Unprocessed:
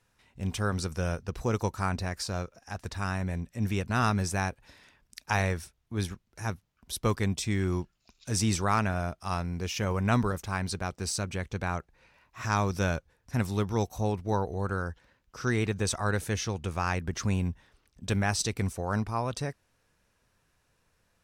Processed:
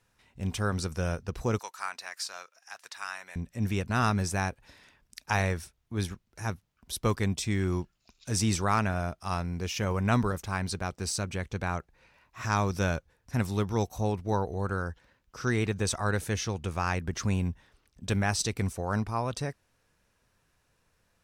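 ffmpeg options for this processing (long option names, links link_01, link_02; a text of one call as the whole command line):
ffmpeg -i in.wav -filter_complex "[0:a]asettb=1/sr,asplit=3[link_01][link_02][link_03];[link_01]atrim=end=1.594[link_04];[link_02]atrim=start=1.59:end=3.36,asetpts=PTS-STARTPTS,afade=type=in:duration=0.004:curve=qsin,afade=type=out:start_time=1.766:duration=0.004:curve=qsin,highpass=1200[link_05];[link_03]atrim=start=3.356[link_06];[link_04][link_05]acrossfade=duration=0.004:curve1=hsin:curve2=qsin[link_07];[link_07][link_06]acrossfade=duration=0.004:curve1=qsin:curve2=hsin" out.wav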